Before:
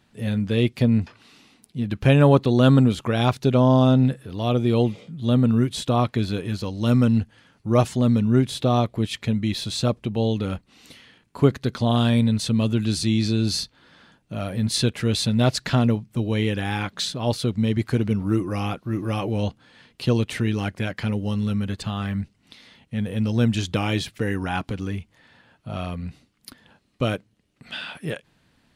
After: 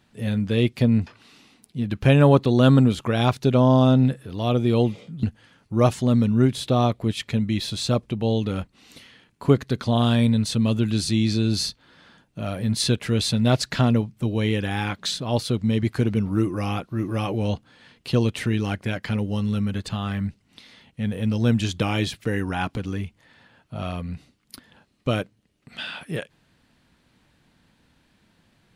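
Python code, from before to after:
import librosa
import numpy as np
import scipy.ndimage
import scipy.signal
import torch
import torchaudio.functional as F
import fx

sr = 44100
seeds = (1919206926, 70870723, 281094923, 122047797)

y = fx.edit(x, sr, fx.cut(start_s=5.23, length_s=1.94), tone=tone)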